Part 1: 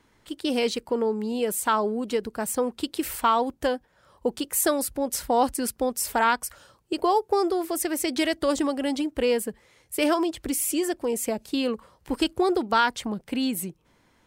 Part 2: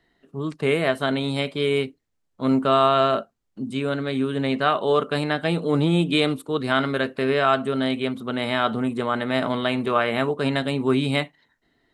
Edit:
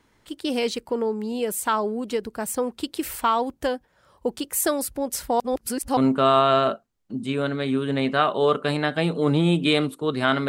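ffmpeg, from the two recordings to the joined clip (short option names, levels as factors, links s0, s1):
-filter_complex "[0:a]apad=whole_dur=10.48,atrim=end=10.48,asplit=2[s0][s1];[s0]atrim=end=5.402[s2];[s1]atrim=start=5.398:end=5.972,asetpts=PTS-STARTPTS,areverse[s3];[1:a]atrim=start=2.438:end=6.95[s4];[s2][s3]acrossfade=d=0.004:c1=hsin:c2=hsin[s5];[s5][s4]acrossfade=d=0.004:c1=hsin:c2=hsin"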